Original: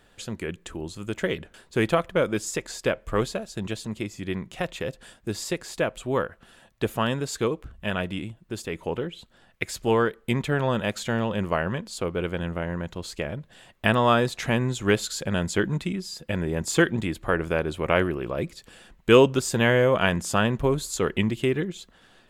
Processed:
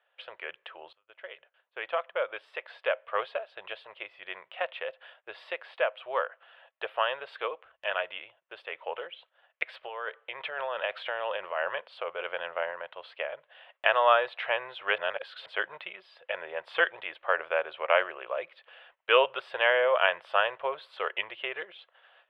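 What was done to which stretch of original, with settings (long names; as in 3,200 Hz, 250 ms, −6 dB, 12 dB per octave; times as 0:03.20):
0:00.93–0:03.09: fade in, from −21 dB
0:09.73–0:12.71: compressor whose output falls as the input rises −27 dBFS
0:14.98–0:15.46: reverse
whole clip: elliptic band-pass filter 560–3,100 Hz, stop band 40 dB; noise gate −59 dBFS, range −11 dB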